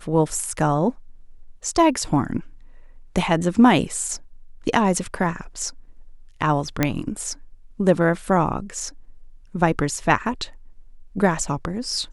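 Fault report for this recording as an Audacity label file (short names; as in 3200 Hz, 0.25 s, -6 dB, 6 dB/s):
6.830000	6.830000	pop -4 dBFS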